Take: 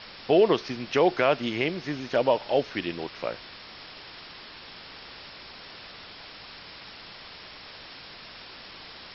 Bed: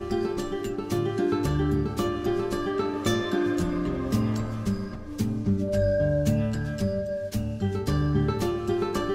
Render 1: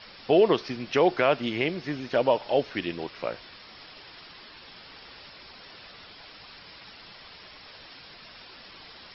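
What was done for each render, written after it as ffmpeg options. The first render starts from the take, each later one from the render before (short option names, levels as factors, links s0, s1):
-af "afftdn=nr=6:nf=-45"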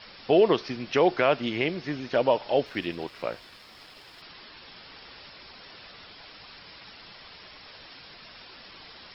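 -filter_complex "[0:a]asettb=1/sr,asplit=3[s0][s1][s2];[s0]atrim=end=2.664[s3];[s1]atrim=start=2.66:end=4.22,asetpts=PTS-STARTPTS,afade=t=in:d=0.004:c=qsin,afade=t=out:st=1.556:d=0.004:c=qsin,aeval=exprs='sgn(val(0))*max(abs(val(0))-0.00133,0)':c=same[s4];[s2]atrim=start=4.216[s5];[s3][s4]acrossfade=d=0.004:c1=hsin:c2=qsin[s6];[s6][s5]acrossfade=d=0.004:c1=qsin:c2=hsin"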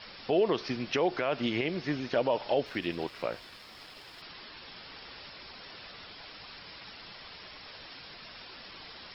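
-af "alimiter=limit=0.133:level=0:latency=1:release=86"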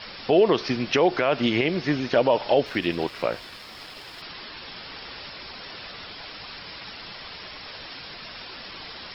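-af "volume=2.51"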